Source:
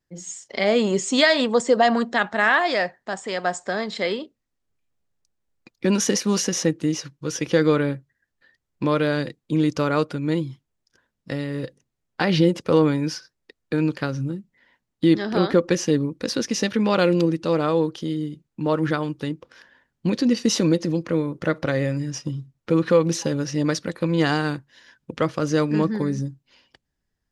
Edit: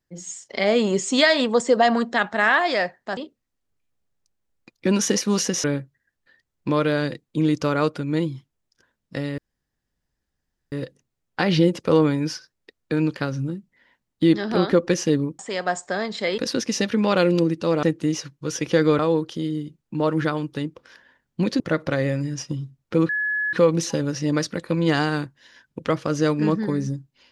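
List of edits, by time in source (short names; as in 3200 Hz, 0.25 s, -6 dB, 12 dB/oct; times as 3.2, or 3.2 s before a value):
3.17–4.16 move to 16.2
6.63–7.79 move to 17.65
11.53 insert room tone 1.34 s
20.26–21.36 cut
22.85 add tone 1700 Hz -21 dBFS 0.44 s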